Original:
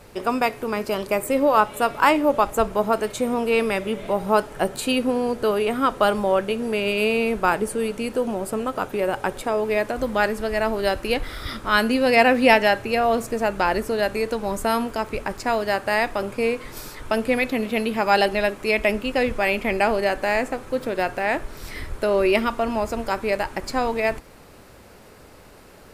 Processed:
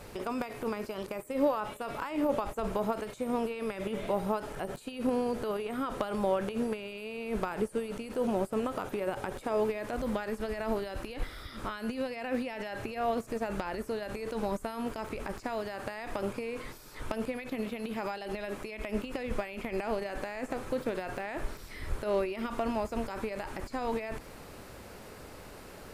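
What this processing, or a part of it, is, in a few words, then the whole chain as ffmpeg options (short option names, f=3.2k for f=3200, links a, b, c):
de-esser from a sidechain: -filter_complex "[0:a]asplit=2[a][b];[b]highpass=4.6k,apad=whole_len=1143766[c];[a][c]sidechaincompress=threshold=-54dB:ratio=12:attack=4.1:release=30"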